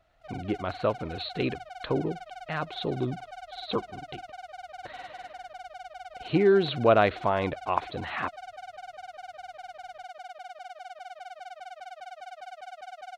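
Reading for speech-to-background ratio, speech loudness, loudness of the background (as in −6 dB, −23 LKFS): 15.5 dB, −28.0 LKFS, −43.5 LKFS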